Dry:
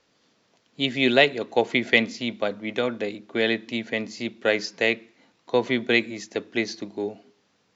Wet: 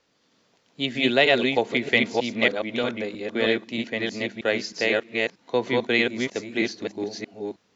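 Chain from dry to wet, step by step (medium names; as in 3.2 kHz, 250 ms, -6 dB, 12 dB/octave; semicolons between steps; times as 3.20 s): chunks repeated in reverse 315 ms, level -1 dB; trim -2 dB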